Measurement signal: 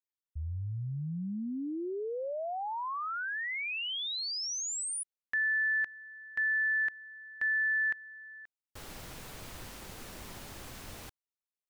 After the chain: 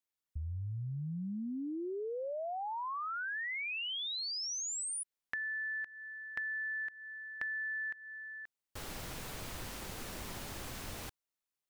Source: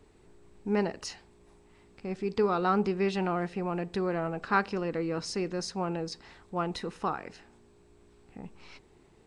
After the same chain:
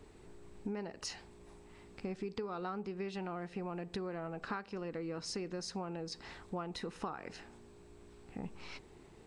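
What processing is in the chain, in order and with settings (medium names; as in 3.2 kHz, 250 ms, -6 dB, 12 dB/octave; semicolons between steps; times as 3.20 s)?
compression 16:1, threshold -39 dBFS; trim +2.5 dB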